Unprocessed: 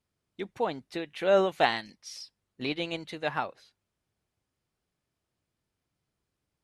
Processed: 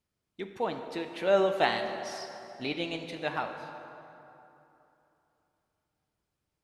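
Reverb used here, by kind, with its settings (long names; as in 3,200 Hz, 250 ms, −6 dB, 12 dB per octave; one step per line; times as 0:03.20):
dense smooth reverb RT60 3.1 s, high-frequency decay 0.6×, DRR 5.5 dB
level −2 dB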